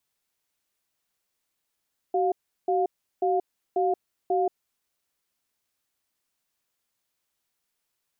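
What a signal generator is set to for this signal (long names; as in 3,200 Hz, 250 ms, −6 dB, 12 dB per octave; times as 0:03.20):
tone pair in a cadence 377 Hz, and 708 Hz, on 0.18 s, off 0.36 s, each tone −23.5 dBFS 2.48 s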